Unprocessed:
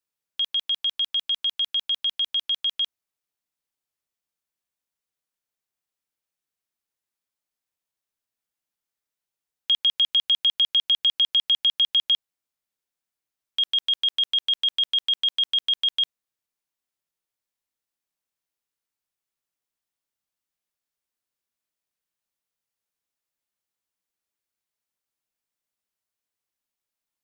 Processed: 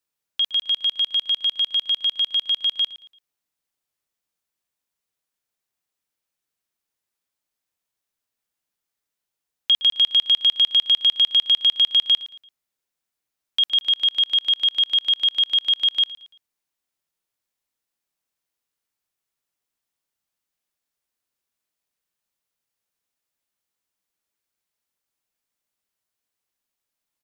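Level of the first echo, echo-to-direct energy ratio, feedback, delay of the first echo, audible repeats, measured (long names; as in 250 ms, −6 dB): −17.5 dB, −17.0 dB, 36%, 113 ms, 2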